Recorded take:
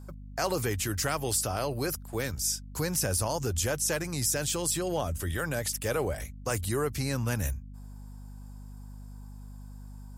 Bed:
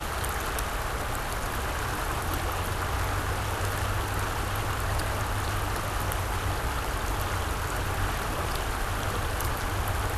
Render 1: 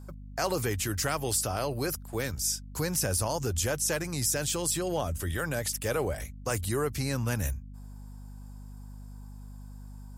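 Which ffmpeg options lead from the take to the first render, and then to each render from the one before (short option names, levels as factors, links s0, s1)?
-af anull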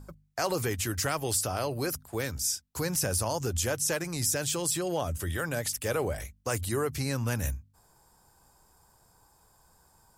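-af "bandreject=f=50:t=h:w=4,bandreject=f=100:t=h:w=4,bandreject=f=150:t=h:w=4,bandreject=f=200:t=h:w=4,bandreject=f=250:t=h:w=4"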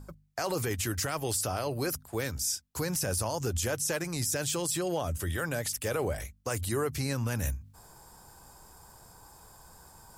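-af "alimiter=limit=0.0891:level=0:latency=1:release=16,areverse,acompressor=mode=upward:threshold=0.00708:ratio=2.5,areverse"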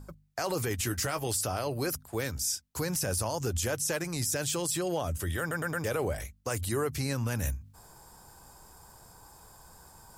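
-filter_complex "[0:a]asettb=1/sr,asplit=3[s0][s1][s2];[s0]atrim=end=0.794[s3];[s1]atrim=start=0.79:end=1.27,asetpts=PTS-STARTPTS,afade=t=in:d=0.004:c=qsin,afade=t=out:st=0.476:d=0.004:c=qsin,asplit=2[s4][s5];[s5]adelay=16,volume=0.355[s6];[s4][s6]amix=inputs=2:normalize=0,atrim=end_sample=21168[s7];[s2]atrim=start=1.266[s8];[s3][s7]acrossfade=d=0.004:c1=hsin:c2=qsin[s9];[s9][s8]acrossfade=d=0.004:c1=qsin:c2=hsin,asplit=5[s10][s11][s12][s13][s14];[s10]atrim=end=5.512[s15];[s11]atrim=start=5.398:end=5.512[s16];[s12]atrim=start=5.398:end=5.512[s17];[s13]atrim=start=5.398:end=5.512[s18];[s14]atrim=start=5.838[s19];[s15][s16]acrossfade=d=0.004:c1=hsin:c2=hsin[s20];[s20][s17]acrossfade=d=0.004:c1=hsin:c2=hsin[s21];[s21][s18]acrossfade=d=0.004:c1=hsin:c2=hsin[s22];[s22][s19]acrossfade=d=0.004:c1=hsin:c2=hsin"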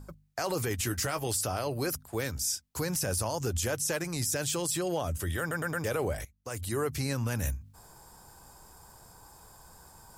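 -filter_complex "[0:a]asplit=2[s0][s1];[s0]atrim=end=6.25,asetpts=PTS-STARTPTS,afade=t=out:st=6.246:d=0.004:c=hsin:silence=0.158489[s2];[s1]atrim=start=6.25,asetpts=PTS-STARTPTS,afade=t=in:d=0.6:silence=0.158489[s3];[s2][s3]concat=n=2:v=0:a=1"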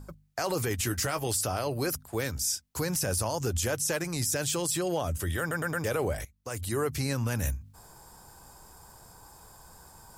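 -af "volume=1.19"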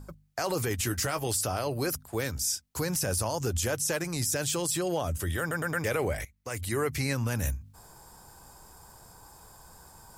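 -filter_complex "[0:a]asettb=1/sr,asplit=3[s0][s1][s2];[s0]atrim=end=5.734[s3];[s1]atrim=start=5.73:end=7.15,asetpts=PTS-STARTPTS,afade=t=in:d=0.004:c=qsin,afade=t=out:st=1.416:d=0.004:c=qsin,equalizer=f=2100:w=2.8:g=7.5[s4];[s2]atrim=start=7.146[s5];[s3][s4]acrossfade=d=0.004:c1=hsin:c2=qsin[s6];[s6][s5]acrossfade=d=0.004:c1=qsin:c2=hsin"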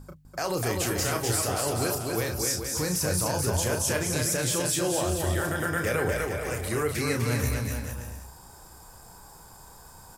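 -filter_complex "[0:a]asplit=2[s0][s1];[s1]adelay=33,volume=0.473[s2];[s0][s2]amix=inputs=2:normalize=0,aecho=1:1:250|437.5|578.1|683.6|762.7:0.631|0.398|0.251|0.158|0.1"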